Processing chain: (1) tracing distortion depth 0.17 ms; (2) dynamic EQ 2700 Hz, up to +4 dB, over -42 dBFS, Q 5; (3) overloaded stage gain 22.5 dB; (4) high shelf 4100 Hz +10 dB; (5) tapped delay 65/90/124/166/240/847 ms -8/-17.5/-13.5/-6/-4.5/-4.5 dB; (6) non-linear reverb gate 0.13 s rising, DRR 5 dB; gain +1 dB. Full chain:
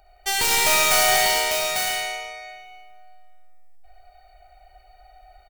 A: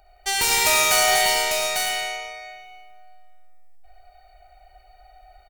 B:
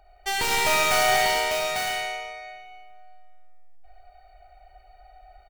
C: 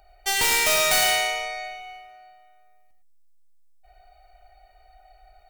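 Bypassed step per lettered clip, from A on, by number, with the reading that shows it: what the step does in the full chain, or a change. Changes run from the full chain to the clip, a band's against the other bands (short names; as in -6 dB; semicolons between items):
1, 125 Hz band -2.0 dB; 4, 8 kHz band -7.5 dB; 5, echo-to-direct 2.5 dB to -5.0 dB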